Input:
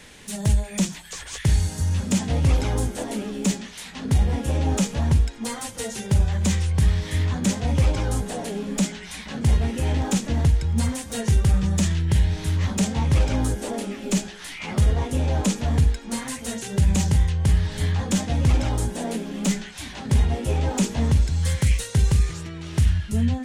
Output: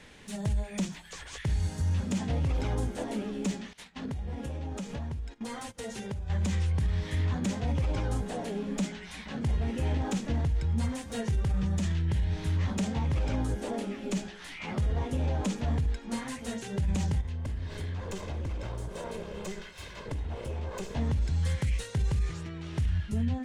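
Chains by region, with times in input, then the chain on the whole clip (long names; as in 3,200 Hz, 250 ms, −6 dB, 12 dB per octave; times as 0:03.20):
0:03.73–0:06.30: noise gate −38 dBFS, range −16 dB + downward compressor 12 to 1, threshold −27 dBFS
0:17.21–0:20.95: lower of the sound and its delayed copy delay 1.9 ms + downward compressor 4 to 1, threshold −28 dBFS
whole clip: low-pass filter 3,300 Hz 6 dB per octave; brickwall limiter −17 dBFS; level −4.5 dB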